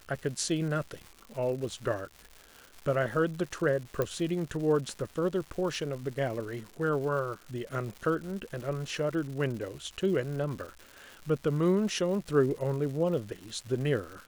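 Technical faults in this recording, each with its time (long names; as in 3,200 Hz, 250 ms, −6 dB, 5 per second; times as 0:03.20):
surface crackle 300 per second −39 dBFS
0:04.02: click −16 dBFS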